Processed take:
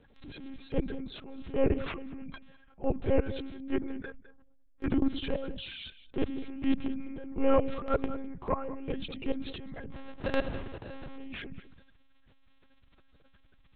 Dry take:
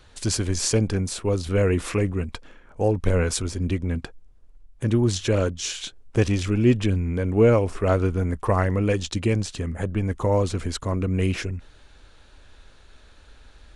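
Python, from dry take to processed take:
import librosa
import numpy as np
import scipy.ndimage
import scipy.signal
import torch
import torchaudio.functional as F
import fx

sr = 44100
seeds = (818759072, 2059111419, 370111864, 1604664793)

p1 = fx.spec_quant(x, sr, step_db=30)
p2 = fx.graphic_eq_15(p1, sr, hz=(100, 400, 1600), db=(-11, 12, 9), at=(3.53, 4.85), fade=0.02)
p3 = fx.sample_hold(p2, sr, seeds[0], rate_hz=1100.0, jitter_pct=0, at=(9.91, 11.16), fade=0.02)
p4 = fx.level_steps(p3, sr, step_db=20)
p5 = fx.lpc_monotone(p4, sr, seeds[1], pitch_hz=270.0, order=10)
p6 = p5 + fx.echo_single(p5, sr, ms=204, db=-20.5, dry=0)
y = fx.transient(p6, sr, attack_db=-9, sustain_db=5)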